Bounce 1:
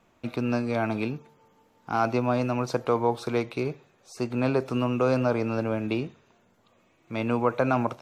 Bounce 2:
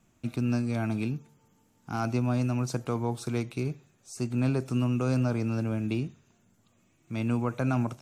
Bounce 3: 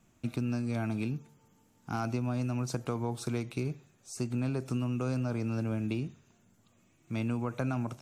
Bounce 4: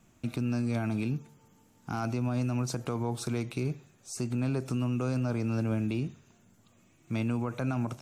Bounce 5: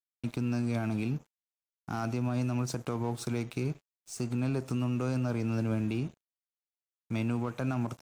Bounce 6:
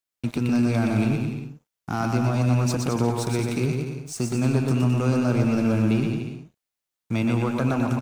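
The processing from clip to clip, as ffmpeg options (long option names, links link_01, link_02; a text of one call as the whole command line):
ffmpeg -i in.wav -af "equalizer=frequency=125:width_type=o:width=1:gain=3,equalizer=frequency=500:width_type=o:width=1:gain=-10,equalizer=frequency=1000:width_type=o:width=1:gain=-8,equalizer=frequency=2000:width_type=o:width=1:gain=-5,equalizer=frequency=4000:width_type=o:width=1:gain=-6,equalizer=frequency=8000:width_type=o:width=1:gain=7,volume=1dB" out.wav
ffmpeg -i in.wav -af "acompressor=threshold=-28dB:ratio=6" out.wav
ffmpeg -i in.wav -af "alimiter=level_in=1.5dB:limit=-24dB:level=0:latency=1:release=55,volume=-1.5dB,volume=3.5dB" out.wav
ffmpeg -i in.wav -af "aeval=exprs='sgn(val(0))*max(abs(val(0))-0.00376,0)':channel_layout=same" out.wav
ffmpeg -i in.wav -af "aecho=1:1:120|216|292.8|354.2|403.4:0.631|0.398|0.251|0.158|0.1,volume=7.5dB" out.wav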